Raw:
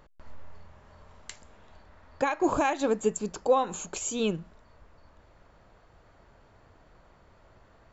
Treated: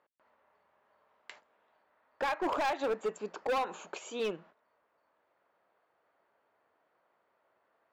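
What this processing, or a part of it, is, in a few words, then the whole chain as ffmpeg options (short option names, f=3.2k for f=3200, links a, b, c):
walkie-talkie: -af "highpass=440,lowpass=2.8k,asoftclip=type=hard:threshold=-27.5dB,agate=range=-12dB:threshold=-55dB:ratio=16:detection=peak"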